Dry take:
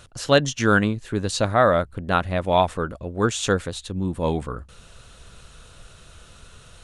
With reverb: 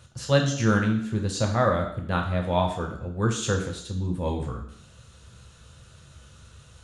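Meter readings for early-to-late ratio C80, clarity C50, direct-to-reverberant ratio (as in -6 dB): 10.5 dB, 7.5 dB, 2.0 dB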